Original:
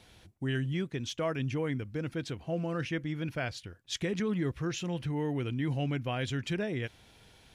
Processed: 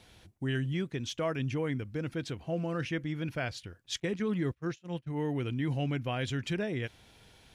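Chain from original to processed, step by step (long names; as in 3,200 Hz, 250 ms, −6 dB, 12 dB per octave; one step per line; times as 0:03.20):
0:04.00–0:05.23: noise gate −32 dBFS, range −31 dB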